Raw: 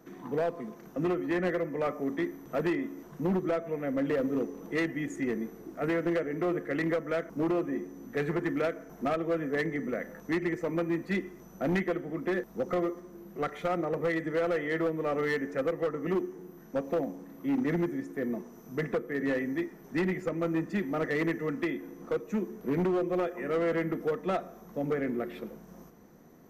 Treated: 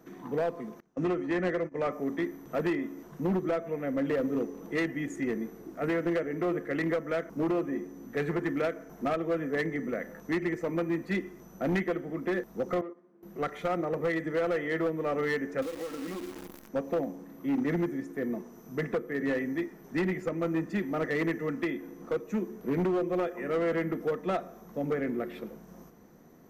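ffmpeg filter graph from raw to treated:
ffmpeg -i in.wav -filter_complex "[0:a]asettb=1/sr,asplit=3[link_01][link_02][link_03];[link_01]atrim=end=0.804[link_04];[link_02]atrim=start=0.8:end=1.92,asetpts=PTS-STARTPTS,afade=type=in:duration=0.004:curve=qsin,afade=type=out:start_time=1.116:duration=0.004:curve=qsin,lowpass=frequency=9100:width=0.5412,lowpass=frequency=9100:width=1.3066,agate=range=-21dB:threshold=-36dB:ratio=16:release=100:detection=peak[link_05];[link_03]atrim=start=1.916[link_06];[link_04][link_05]acrossfade=duration=0.004:curve1=hsin:curve2=qsin[link_07];[link_07][link_06]acrossfade=duration=0.004:curve1=qsin:curve2=hsin,asettb=1/sr,asplit=3[link_08][link_09][link_10];[link_08]atrim=end=12.814[link_11];[link_09]atrim=start=12.81:end=13.23,asetpts=PTS-STARTPTS,afade=type=in:duration=0.004:curve=qsin,afade=type=out:start_time=0.416:duration=0.004:curve=qsin,agate=range=-13dB:threshold=-36dB:ratio=16:release=100:detection=peak,highpass=180,lowpass=2400,acompressor=threshold=-38dB:ratio=4:attack=3.2:release=140:knee=1:detection=peak[link_12];[link_10]atrim=start=13.226[link_13];[link_11][link_12]acrossfade=duration=0.004:curve1=hsin:curve2=qsin[link_14];[link_14][link_13]acrossfade=duration=0.004:curve1=qsin:curve2=hsin,asettb=1/sr,asplit=3[link_15][link_16][link_17];[link_15]atrim=end=15.624[link_18];[link_16]atrim=start=15.62:end=16.69,asetpts=PTS-STARTPTS,afade=type=in:duration=0.004:curve=qsin,afade=type=out:start_time=1.066:duration=0.004:curve=qsin,aecho=1:1:3.7:0.95,atrim=end_sample=47187,acompressor=threshold=-33dB:ratio=10:attack=3.2:release=140:knee=1:detection=peak,acrusher=bits=8:dc=4:mix=0:aa=0.000001[link_19];[link_17]atrim=start=16.686[link_20];[link_18][link_19]acrossfade=duration=0.004:curve1=hsin:curve2=qsin[link_21];[link_21][link_20]acrossfade=duration=0.004:curve1=qsin:curve2=hsin" out.wav

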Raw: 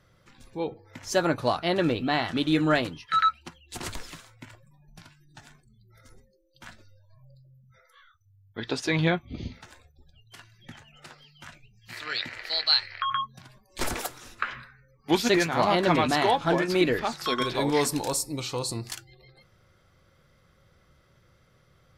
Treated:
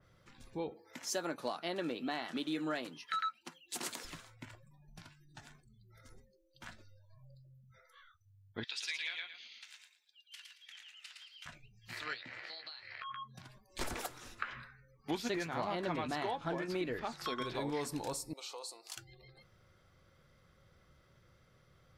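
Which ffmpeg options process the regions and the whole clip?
ffmpeg -i in.wav -filter_complex "[0:a]asettb=1/sr,asplit=3[link_01][link_02][link_03];[link_01]atrim=end=0.714[link_04];[link_02]atrim=start=0.71:end=4.05,asetpts=PTS-STARTPTS,afade=type=in:duration=0.004:curve=qsin,afade=type=out:start_time=3.336:duration=0.004:curve=qsin,highpass=frequency=190:width=0.5412,highpass=frequency=190:width=1.3066,aemphasis=mode=production:type=cd,volume=11.5dB,asoftclip=hard,volume=-11.5dB[link_05];[link_03]atrim=start=4.046[link_06];[link_04][link_05]acrossfade=duration=0.004:curve1=hsin:curve2=qsin[link_07];[link_07][link_06]acrossfade=duration=0.004:curve1=qsin:curve2=hsin,asettb=1/sr,asplit=3[link_08][link_09][link_10];[link_08]atrim=end=8.644[link_11];[link_09]atrim=start=8.64:end=11.46,asetpts=PTS-STARTPTS,afade=type=in:duration=0.004:curve=qsin,afade=type=out:start_time=2.816:duration=0.004:curve=qsin,highpass=frequency=2700:width_type=q:width=1.6,aecho=1:1:112|224|336:0.668|0.147|0.0323,atrim=end_sample=124362[link_12];[link_10]atrim=start=11.456[link_13];[link_11][link_12]acrossfade=duration=0.004:curve1=hsin:curve2=qsin[link_14];[link_14][link_13]acrossfade=duration=0.004:curve1=qsin:curve2=hsin,asettb=1/sr,asplit=3[link_15][link_16][link_17];[link_15]atrim=end=12.144[link_18];[link_16]atrim=start=12.14:end=13.35,asetpts=PTS-STARTPTS,afade=type=in:duration=0.004:curve=qsin,afade=type=out:start_time=1.206:duration=0.004:curve=qsin,acompressor=threshold=-37dB:ratio=16:attack=3.2:release=140:knee=1:detection=peak,highpass=100,lowpass=5700,asplit=2[link_19][link_20];[link_20]adelay=15,volume=-7dB[link_21];[link_19][link_21]amix=inputs=2:normalize=0,atrim=end_sample=53361[link_22];[link_17]atrim=start=13.346[link_23];[link_18][link_22]acrossfade=duration=0.004:curve1=hsin:curve2=qsin[link_24];[link_24][link_23]acrossfade=duration=0.004:curve1=qsin:curve2=hsin,asettb=1/sr,asplit=3[link_25][link_26][link_27];[link_25]atrim=end=18.334[link_28];[link_26]atrim=start=18.33:end=18.97,asetpts=PTS-STARTPTS,afade=type=in:duration=0.004:curve=qsin,afade=type=out:start_time=0.636:duration=0.004:curve=qsin,equalizer=frequency=1800:width_type=o:width=0.56:gain=-10.5,acompressor=threshold=-37dB:ratio=2.5:attack=3.2:release=140:knee=1:detection=peak,highpass=frequency=510:width=0.5412,highpass=frequency=510:width=1.3066[link_29];[link_27]atrim=start=18.966[link_30];[link_28][link_29]acrossfade=duration=0.004:curve1=hsin:curve2=qsin[link_31];[link_31][link_30]acrossfade=duration=0.004:curve1=qsin:curve2=hsin,highshelf=frequency=12000:gain=-3.5,acompressor=threshold=-32dB:ratio=3,adynamicequalizer=threshold=0.00447:dfrequency=2800:dqfactor=0.7:tfrequency=2800:tqfactor=0.7:attack=5:release=100:ratio=0.375:range=1.5:mode=cutabove:tftype=highshelf,volume=-4.5dB" out.wav

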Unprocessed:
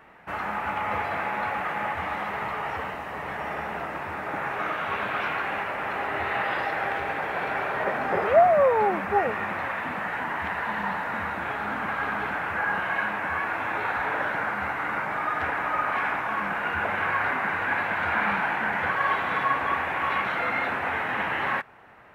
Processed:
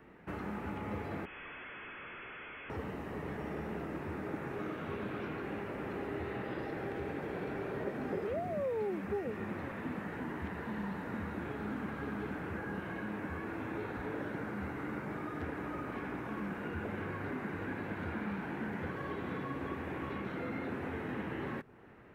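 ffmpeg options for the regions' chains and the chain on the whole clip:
ffmpeg -i in.wav -filter_complex "[0:a]asettb=1/sr,asplit=3[link_01][link_02][link_03];[link_01]atrim=end=1.254[link_04];[link_02]atrim=start=1.25:end=2.7,asetpts=PTS-STARTPTS,afade=type=in:duration=0.004:curve=qsin,afade=type=out:start_time=1.446:duration=0.004:curve=qsin,tiltshelf=frequency=800:gain=-10,aeval=exprs='(tanh(44.7*val(0)+0.1)-tanh(0.1))/44.7':channel_layout=same,lowpass=frequency=2900:width_type=q:width=0.5098,lowpass=frequency=2900:width_type=q:width=0.6013,lowpass=frequency=2900:width_type=q:width=0.9,lowpass=frequency=2900:width_type=q:width=2.563,afreqshift=-3400[link_05];[link_03]atrim=start=2.696[link_06];[link_04][link_05]acrossfade=duration=0.004:curve1=hsin:curve2=qsin[link_07];[link_07][link_06]acrossfade=duration=0.004:curve1=qsin:curve2=hsin,lowshelf=frequency=520:width_type=q:width=1.5:gain=9.5,acrossover=split=500|1800|3800[link_08][link_09][link_10][link_11];[link_08]acompressor=threshold=-28dB:ratio=4[link_12];[link_09]acompressor=threshold=-38dB:ratio=4[link_13];[link_10]acompressor=threshold=-49dB:ratio=4[link_14];[link_11]acompressor=threshold=-55dB:ratio=4[link_15];[link_12][link_13][link_14][link_15]amix=inputs=4:normalize=0,volume=-8.5dB" out.wav

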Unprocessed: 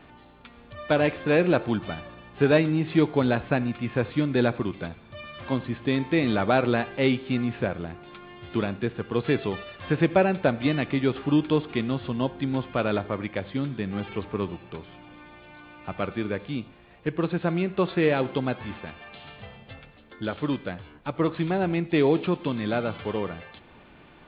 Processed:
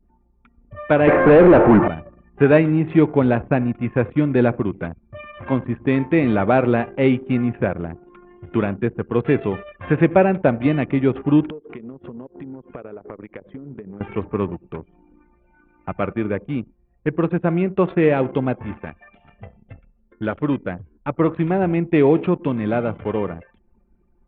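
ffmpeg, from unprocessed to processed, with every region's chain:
ffmpeg -i in.wav -filter_complex "[0:a]asettb=1/sr,asplit=3[link_01][link_02][link_03];[link_01]atrim=end=1.074[link_04];[link_02]atrim=start=1.07:end=1.88,asetpts=PTS-STARTPTS,afade=type=in:duration=0.004:curve=qsin,afade=type=out:start_time=0.806:duration=0.004:curve=qsin,lowpass=frequency=2000:width=0.5412,lowpass=frequency=2000:width=1.3066,asplit=2[link_05][link_06];[link_06]highpass=frequency=720:poles=1,volume=33dB,asoftclip=type=tanh:threshold=-8dB[link_07];[link_05][link_07]amix=inputs=2:normalize=0,lowpass=frequency=1000:poles=1,volume=-6dB[link_08];[link_03]atrim=start=1.876[link_09];[link_04][link_08]acrossfade=duration=0.004:curve1=hsin:curve2=qsin[link_10];[link_10][link_09]acrossfade=duration=0.004:curve1=qsin:curve2=hsin,asettb=1/sr,asplit=3[link_11][link_12][link_13];[link_11]atrim=end=11.504[link_14];[link_12]atrim=start=11.5:end=14.01,asetpts=PTS-STARTPTS,afade=type=in:duration=0.004:curve=qsin,afade=type=out:start_time=2.506:duration=0.004:curve=qsin,highpass=frequency=140:poles=1,equalizer=frequency=440:width_type=o:width=0.29:gain=7,acompressor=threshold=-36dB:ratio=10:attack=3.2:release=140:knee=1:detection=peak[link_15];[link_13]atrim=start=14.006[link_16];[link_14][link_15]acrossfade=duration=0.004:curve1=hsin:curve2=qsin[link_17];[link_17][link_16]acrossfade=duration=0.004:curve1=qsin:curve2=hsin,adynamicequalizer=threshold=0.00891:dfrequency=1600:dqfactor=0.89:tfrequency=1600:tqfactor=0.89:attack=5:release=100:ratio=0.375:range=2.5:mode=cutabove:tftype=bell,anlmdn=1,lowpass=frequency=2500:width=0.5412,lowpass=frequency=2500:width=1.3066,volume=6.5dB" out.wav

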